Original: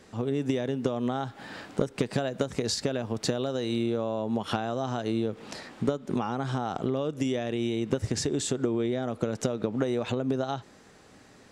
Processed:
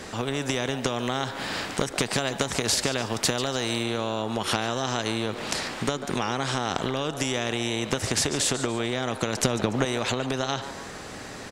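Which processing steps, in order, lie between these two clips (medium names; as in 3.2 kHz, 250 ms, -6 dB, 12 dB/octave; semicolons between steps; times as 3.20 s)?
9.38–9.85 s: bass shelf 370 Hz +11.5 dB; on a send: frequency-shifting echo 144 ms, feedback 38%, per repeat +140 Hz, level -20 dB; on the sum: spectrum-flattening compressor 2:1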